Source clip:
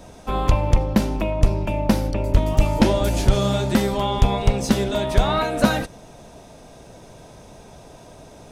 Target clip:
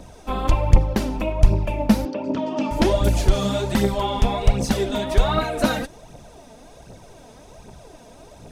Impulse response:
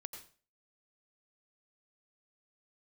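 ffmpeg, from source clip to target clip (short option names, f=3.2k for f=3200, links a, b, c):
-filter_complex "[0:a]aphaser=in_gain=1:out_gain=1:delay=4.7:decay=0.54:speed=1.3:type=triangular,asettb=1/sr,asplit=3[a][b][c];[a]atrim=end=2.054[d];[b]atrim=start=2.05:end=2.71,asetpts=PTS-STARTPTS,afade=t=in:d=0.004:c=qsin,afade=t=out:st=0.656:d=0.004:c=qsin,highpass=f=200:w=0.5412,highpass=f=200:w=1.3066,equalizer=f=260:t=q:w=4:g=9,equalizer=f=2.1k:t=q:w=4:g=-7,equalizer=f=3.9k:t=q:w=4:g=-4,lowpass=f=5.4k:w=0.5412,lowpass=f=5.4k:w=1.3066[e];[c]atrim=start=2.706[f];[d][e]acrossfade=d=0.004:c1=hsin:c2=qsin[g];[g][f]acrossfade=d=0.004:c1=qsin:c2=hsin,volume=-2.5dB"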